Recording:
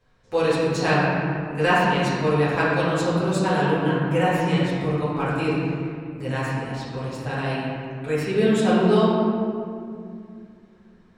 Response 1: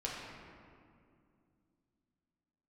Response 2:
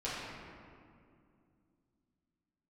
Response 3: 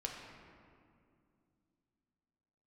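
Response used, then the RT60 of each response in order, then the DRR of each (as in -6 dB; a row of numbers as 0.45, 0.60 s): 2; 2.4, 2.4, 2.4 s; -5.0, -10.5, -0.5 dB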